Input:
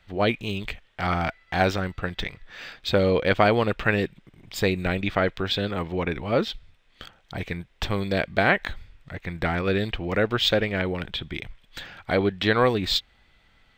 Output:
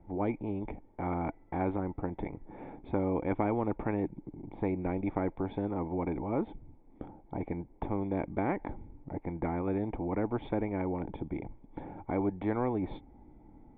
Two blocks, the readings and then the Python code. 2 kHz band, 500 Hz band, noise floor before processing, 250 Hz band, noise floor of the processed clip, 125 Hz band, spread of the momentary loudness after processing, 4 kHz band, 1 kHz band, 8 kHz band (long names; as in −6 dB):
−20.5 dB, −10.0 dB, −61 dBFS, −4.0 dB, −58 dBFS, −8.5 dB, 14 LU, below −30 dB, −9.0 dB, below −35 dB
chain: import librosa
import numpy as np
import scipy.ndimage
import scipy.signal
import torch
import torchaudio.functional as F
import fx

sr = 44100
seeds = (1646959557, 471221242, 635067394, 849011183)

y = fx.formant_cascade(x, sr, vowel='u')
y = fx.spectral_comp(y, sr, ratio=2.0)
y = F.gain(torch.from_numpy(y), 5.5).numpy()